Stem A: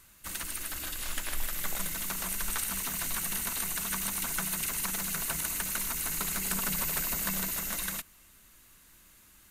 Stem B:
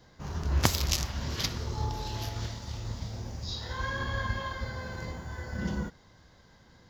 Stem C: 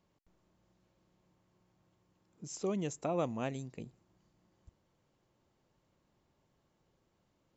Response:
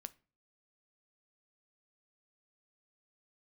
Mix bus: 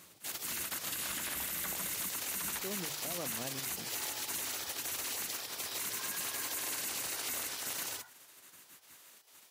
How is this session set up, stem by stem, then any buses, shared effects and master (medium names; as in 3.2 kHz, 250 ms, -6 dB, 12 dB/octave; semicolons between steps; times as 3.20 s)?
+1.5 dB, 0.00 s, send -3.5 dB, spectral gate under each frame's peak -15 dB weak
-11.0 dB, 2.20 s, no send, elliptic high-pass 730 Hz
-4.5 dB, 0.00 s, no send, upward compressor, threshold -48 dBFS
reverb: on, pre-delay 7 ms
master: high-pass 77 Hz; hum notches 50/100/150 Hz; peak limiter -27.5 dBFS, peak gain reduction 10.5 dB